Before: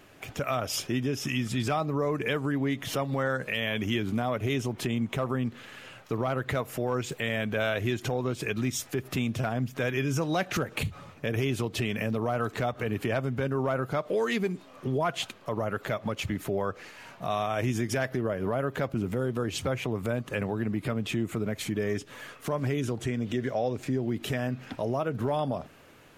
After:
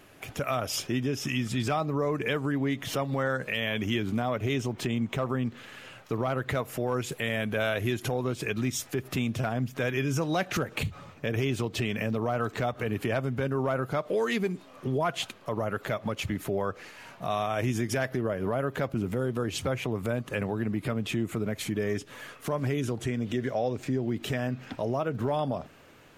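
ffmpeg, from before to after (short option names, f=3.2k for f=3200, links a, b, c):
-af "asetnsamples=n=441:p=0,asendcmd='0.7 equalizer g -2.5;4.21 equalizer g -10;5.57 equalizer g 0.5;6.89 equalizer g 11.5;8.34 equalizer g 0.5;10.77 equalizer g -8;12.63 equalizer g 2.5;23.75 equalizer g -7',equalizer=f=11k:t=o:w=0.24:g=7.5"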